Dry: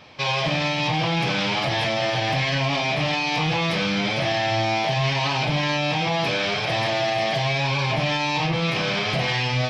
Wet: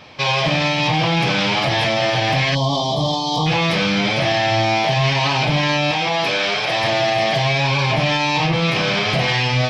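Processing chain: 2.55–3.47 s: time-frequency box 1.2–3 kHz -28 dB; 5.91–6.84 s: high-pass 360 Hz 6 dB/octave; trim +5 dB

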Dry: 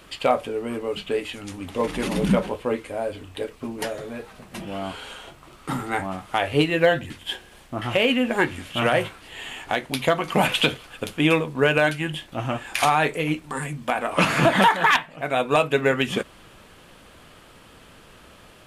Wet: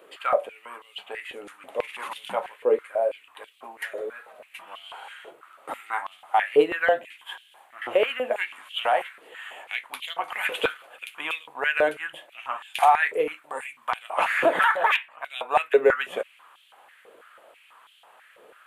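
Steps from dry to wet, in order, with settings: peaking EQ 5.3 kHz -15 dB 0.99 oct; step-sequenced high-pass 6.1 Hz 450–3200 Hz; trim -5.5 dB

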